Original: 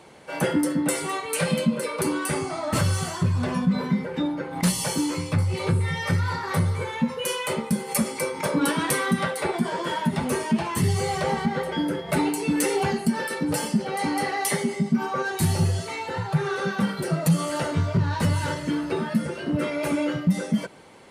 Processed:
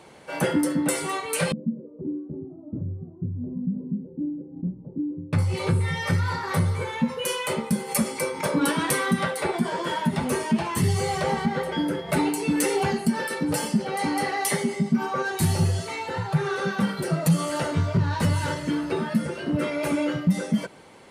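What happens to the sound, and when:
0:01.52–0:05.33: transistor ladder low-pass 360 Hz, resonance 45%

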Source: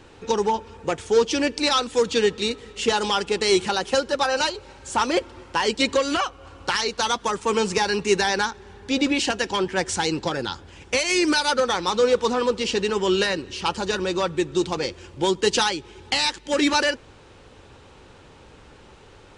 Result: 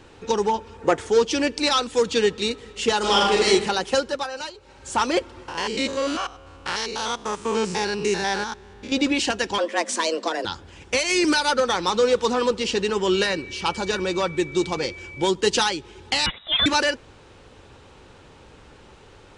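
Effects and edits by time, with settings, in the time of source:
0:00.82–0:01.10: gain on a spectral selection 220–2,200 Hz +6 dB
0:02.99–0:03.45: thrown reverb, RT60 0.88 s, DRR −4 dB
0:04.02–0:04.88: duck −10 dB, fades 0.28 s
0:05.48–0:08.92: spectrum averaged block by block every 100 ms
0:09.58–0:10.45: frequency shifter +160 Hz
0:11.24–0:12.51: multiband upward and downward compressor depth 40%
0:13.13–0:15.27: steady tone 2,300 Hz −38 dBFS
0:16.26–0:16.66: voice inversion scrambler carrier 3,800 Hz

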